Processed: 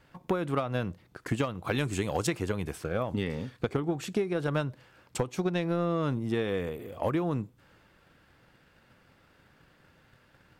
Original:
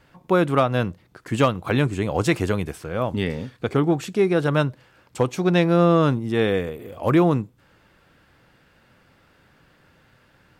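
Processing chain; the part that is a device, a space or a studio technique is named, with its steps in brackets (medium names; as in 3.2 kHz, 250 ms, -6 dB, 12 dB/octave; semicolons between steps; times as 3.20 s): drum-bus smash (transient shaper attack +8 dB, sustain +2 dB; compression 10:1, threshold -19 dBFS, peak gain reduction 12 dB; saturation -10.5 dBFS, distortion -22 dB); 1.71–2.27 s: treble shelf 2.9 kHz +10 dB; trim -5 dB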